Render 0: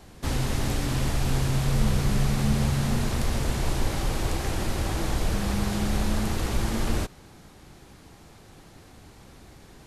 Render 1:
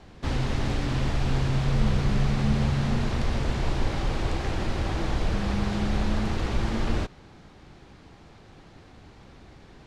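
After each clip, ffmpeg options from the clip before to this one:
-af "lowpass=4.4k"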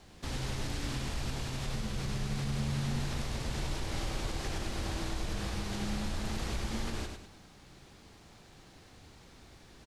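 -af "aemphasis=mode=production:type=75fm,alimiter=limit=-20dB:level=0:latency=1:release=106,aecho=1:1:101|202|303|404:0.531|0.191|0.0688|0.0248,volume=-7dB"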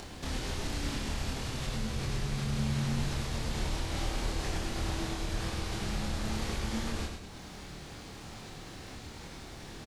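-filter_complex "[0:a]acompressor=mode=upward:threshold=-37dB:ratio=2.5,asplit=2[a][b];[b]adelay=27,volume=-2.5dB[c];[a][c]amix=inputs=2:normalize=0"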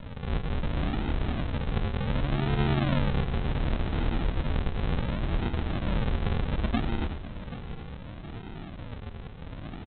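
-af "aresample=8000,acrusher=samples=20:mix=1:aa=0.000001:lfo=1:lforange=12:lforate=0.68,aresample=44100,aecho=1:1:779:0.168,volume=6dB"

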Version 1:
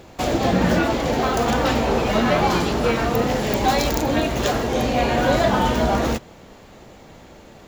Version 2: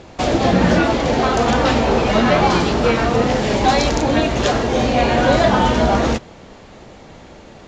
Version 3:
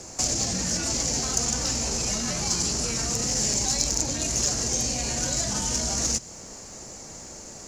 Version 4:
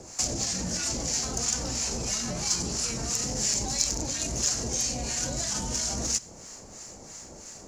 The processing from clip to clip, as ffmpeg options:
-af "lowpass=f=7k:w=0.5412,lowpass=f=7k:w=1.3066,volume=4dB"
-filter_complex "[0:a]acrossover=split=210|2300|6900[a][b][c][d];[a]acompressor=threshold=-22dB:ratio=4[e];[b]acompressor=threshold=-29dB:ratio=4[f];[c]acompressor=threshold=-29dB:ratio=4[g];[d]acompressor=threshold=-46dB:ratio=4[h];[e][f][g][h]amix=inputs=4:normalize=0,alimiter=limit=-18dB:level=0:latency=1:release=20,aexciter=amount=11.1:drive=8.8:freq=5.4k,volume=-5.5dB"
-filter_complex "[0:a]acrossover=split=1000[a][b];[a]aeval=exprs='val(0)*(1-0.7/2+0.7/2*cos(2*PI*3*n/s))':c=same[c];[b]aeval=exprs='val(0)*(1-0.7/2-0.7/2*cos(2*PI*3*n/s))':c=same[d];[c][d]amix=inputs=2:normalize=0"

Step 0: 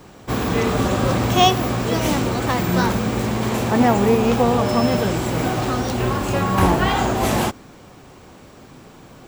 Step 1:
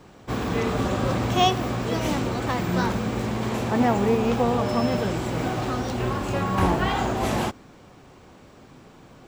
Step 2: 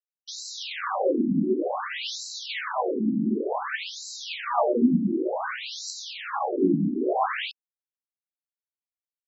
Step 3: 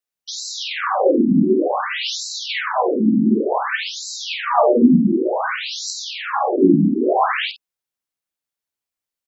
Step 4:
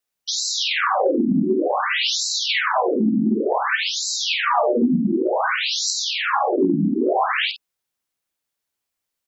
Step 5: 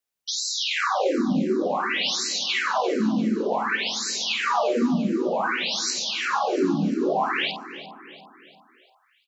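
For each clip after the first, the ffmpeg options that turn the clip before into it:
-af "highshelf=f=9.5k:g=-10,volume=-5dB"
-af "acrusher=bits=5:mix=0:aa=0.000001,afftfilt=real='re*between(b*sr/1024,230*pow(5500/230,0.5+0.5*sin(2*PI*0.55*pts/sr))/1.41,230*pow(5500/230,0.5+0.5*sin(2*PI*0.55*pts/sr))*1.41)':imag='im*between(b*sr/1024,230*pow(5500/230,0.5+0.5*sin(2*PI*0.55*pts/sr))/1.41,230*pow(5500/230,0.5+0.5*sin(2*PI*0.55*pts/sr))*1.41)':win_size=1024:overlap=0.75,volume=6.5dB"
-filter_complex "[0:a]asplit=2[a][b];[b]adelay=50,volume=-10.5dB[c];[a][c]amix=inputs=2:normalize=0,volume=8dB"
-af "acompressor=threshold=-23dB:ratio=4,volume=5.5dB"
-af "aecho=1:1:346|692|1038|1384|1730:0.188|0.0923|0.0452|0.0222|0.0109,volume=-4dB"

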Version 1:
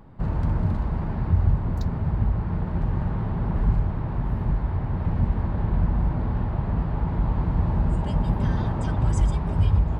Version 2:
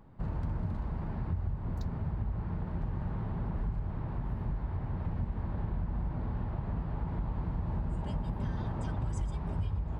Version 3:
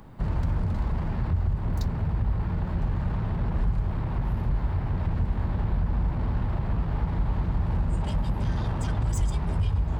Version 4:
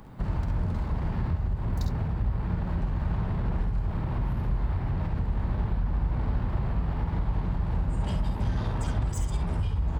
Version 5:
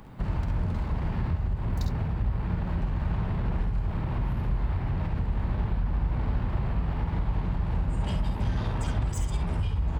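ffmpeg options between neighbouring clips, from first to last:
-af "acompressor=threshold=-21dB:ratio=6,volume=-8dB"
-filter_complex "[0:a]highshelf=f=2.6k:g=9.5,acrossover=split=110[a][b];[b]asoftclip=type=tanh:threshold=-39dB[c];[a][c]amix=inputs=2:normalize=0,volume=9dB"
-af "acompressor=threshold=-24dB:ratio=6,aecho=1:1:51|67:0.376|0.398"
-af "equalizer=f=2.6k:w=1.5:g=3.5"

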